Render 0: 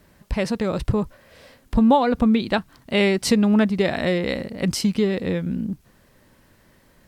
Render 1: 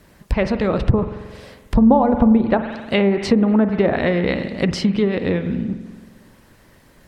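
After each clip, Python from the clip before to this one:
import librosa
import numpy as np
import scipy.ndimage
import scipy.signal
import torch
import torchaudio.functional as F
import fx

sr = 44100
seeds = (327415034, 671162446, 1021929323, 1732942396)

y = fx.rev_spring(x, sr, rt60_s=1.4, pass_ms=(45,), chirp_ms=70, drr_db=8.5)
y = fx.hpss(y, sr, part='percussive', gain_db=5)
y = fx.env_lowpass_down(y, sr, base_hz=860.0, full_db=-12.0)
y = F.gain(torch.from_numpy(y), 2.0).numpy()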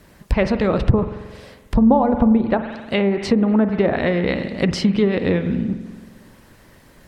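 y = fx.rider(x, sr, range_db=3, speed_s=2.0)
y = F.gain(torch.from_numpy(y), -1.0).numpy()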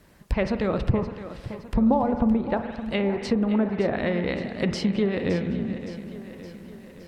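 y = fx.echo_feedback(x, sr, ms=566, feedback_pct=57, wet_db=-12.5)
y = F.gain(torch.from_numpy(y), -6.5).numpy()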